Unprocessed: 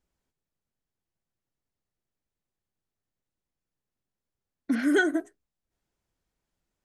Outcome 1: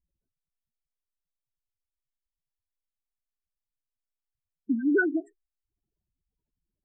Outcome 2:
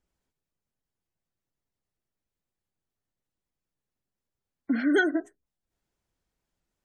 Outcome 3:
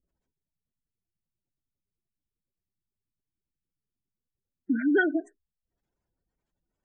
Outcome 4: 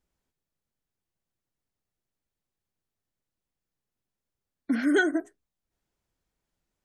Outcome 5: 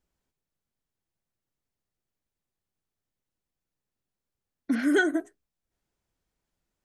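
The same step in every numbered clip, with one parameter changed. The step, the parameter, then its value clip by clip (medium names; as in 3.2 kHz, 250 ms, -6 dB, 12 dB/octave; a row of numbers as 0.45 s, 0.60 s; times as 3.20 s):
spectral gate, under each frame's peak: -10 dB, -35 dB, -20 dB, -45 dB, -60 dB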